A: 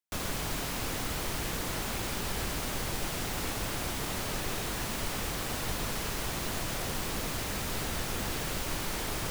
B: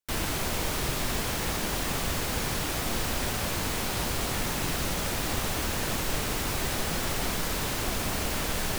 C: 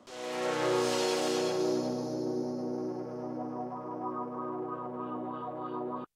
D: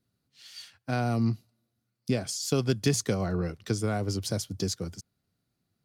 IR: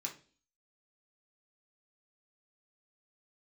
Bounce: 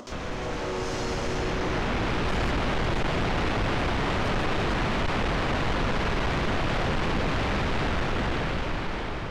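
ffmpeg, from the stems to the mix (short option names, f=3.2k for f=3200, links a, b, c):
-filter_complex "[0:a]lowpass=3.1k,dynaudnorm=f=460:g=7:m=11.5dB,volume=2.5dB[a];[1:a]acrossover=split=3600[b][c];[c]acompressor=threshold=-51dB:ratio=4:attack=1:release=60[d];[b][d]amix=inputs=2:normalize=0,volume=-16.5dB[e];[2:a]equalizer=f=6.1k:t=o:w=0.77:g=8,volume=-2.5dB[f];[3:a]acompressor=threshold=-31dB:ratio=6,volume=-6.5dB[g];[a][e][f][g]amix=inputs=4:normalize=0,highshelf=f=6.2k:g=-11.5,acompressor=mode=upward:threshold=-30dB:ratio=2.5,asoftclip=type=tanh:threshold=-21.5dB"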